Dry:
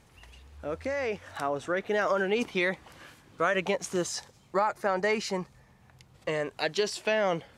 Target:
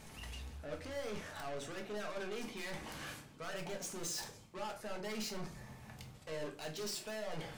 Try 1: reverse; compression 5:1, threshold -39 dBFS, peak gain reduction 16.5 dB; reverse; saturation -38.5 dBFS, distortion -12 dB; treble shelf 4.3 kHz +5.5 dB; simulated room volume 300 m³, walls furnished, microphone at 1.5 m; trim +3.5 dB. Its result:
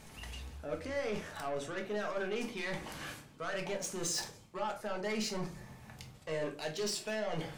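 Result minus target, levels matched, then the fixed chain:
saturation: distortion -7 dB
reverse; compression 5:1, threshold -39 dBFS, peak gain reduction 16.5 dB; reverse; saturation -47.5 dBFS, distortion -5 dB; treble shelf 4.3 kHz +5.5 dB; simulated room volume 300 m³, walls furnished, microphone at 1.5 m; trim +3.5 dB

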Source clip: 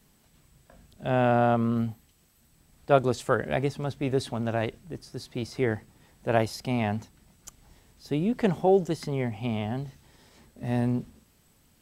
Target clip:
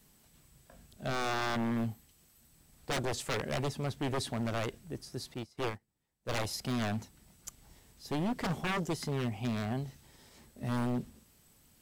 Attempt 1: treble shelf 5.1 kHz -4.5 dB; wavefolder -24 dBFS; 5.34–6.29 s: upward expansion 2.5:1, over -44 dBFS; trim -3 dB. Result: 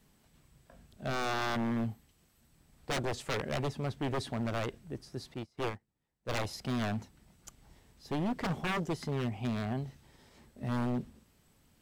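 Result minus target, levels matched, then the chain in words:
8 kHz band -4.0 dB
treble shelf 5.1 kHz +5.5 dB; wavefolder -24 dBFS; 5.34–6.29 s: upward expansion 2.5:1, over -44 dBFS; trim -3 dB

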